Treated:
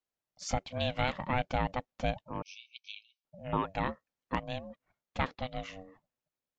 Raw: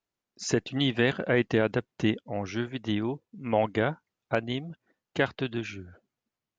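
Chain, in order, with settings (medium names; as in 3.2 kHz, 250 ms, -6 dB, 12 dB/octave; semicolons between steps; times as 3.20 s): ring modulator 380 Hz; 2.42–3.25 s: brick-wall FIR band-pass 2.2–6.3 kHz; trim -3.5 dB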